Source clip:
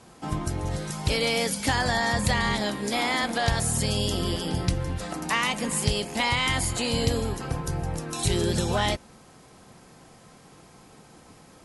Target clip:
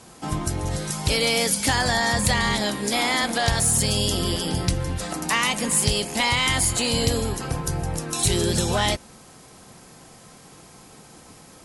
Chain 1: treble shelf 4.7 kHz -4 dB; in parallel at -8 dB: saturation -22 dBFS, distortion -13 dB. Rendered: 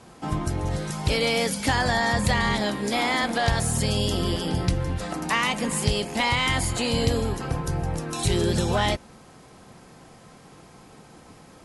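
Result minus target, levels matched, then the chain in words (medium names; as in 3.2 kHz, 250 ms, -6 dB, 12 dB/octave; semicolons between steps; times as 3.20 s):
8 kHz band -6.0 dB
treble shelf 4.7 kHz +7.5 dB; in parallel at -8 dB: saturation -22 dBFS, distortion -11 dB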